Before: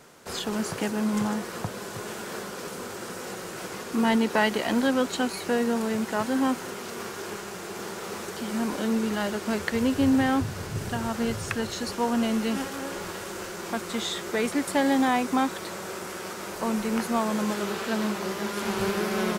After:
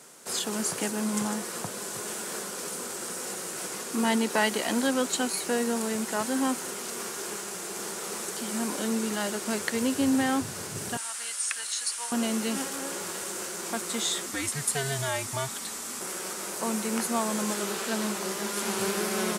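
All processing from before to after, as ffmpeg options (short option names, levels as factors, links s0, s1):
-filter_complex "[0:a]asettb=1/sr,asplit=3[s0][s1][s2];[s0]atrim=end=10.974[s3];[s1]atrim=start=10.97:end=12.12,asetpts=PTS-STARTPTS,afade=t=in:d=0.004:c=qsin,afade=t=out:st=1.146:d=0.004:c=qsin,acrossover=split=7200[s4][s5];[s5]acompressor=threshold=0.00126:ratio=4:attack=1:release=60[s6];[s4][s6]amix=inputs=2:normalize=0,highpass=1500,equalizer=f=9400:w=2.4:g=14[s7];[s2]atrim=start=12.116[s8];[s3][s7]acrossfade=d=0.004:c1=hsin:c2=qsin[s9];[s9][s8]acrossfade=d=0.004:c1=qsin:c2=hsin,asettb=1/sr,asplit=3[s10][s11][s12];[s10]atrim=end=14.264[s13];[s11]atrim=start=14.26:end=16.01,asetpts=PTS-STARTPTS,afade=t=in:d=0.004:c=qsin,afade=t=out:st=1.746:d=0.004:c=qsin,equalizer=f=550:t=o:w=2.4:g=-6,afreqshift=-140[s14];[s12]atrim=start=16.006[s15];[s13][s14]acrossfade=d=0.004:c1=hsin:c2=qsin[s16];[s16][s15]acrossfade=d=0.004:c1=qsin:c2=hsin,highpass=160,equalizer=f=9100:w=0.74:g=13,volume=0.75"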